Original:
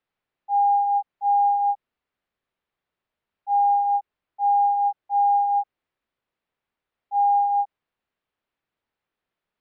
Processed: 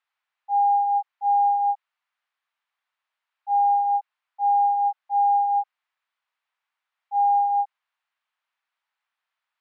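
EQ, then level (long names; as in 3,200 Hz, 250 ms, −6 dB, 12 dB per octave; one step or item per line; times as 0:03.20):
high-pass filter 860 Hz 24 dB per octave
high-frequency loss of the air 60 metres
+4.0 dB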